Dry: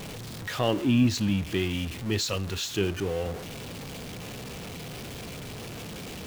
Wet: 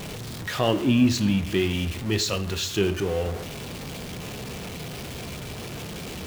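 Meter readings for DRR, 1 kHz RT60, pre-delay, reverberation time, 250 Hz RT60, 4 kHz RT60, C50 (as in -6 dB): 10.0 dB, 0.75 s, 3 ms, 0.80 s, 0.95 s, 0.50 s, 15.0 dB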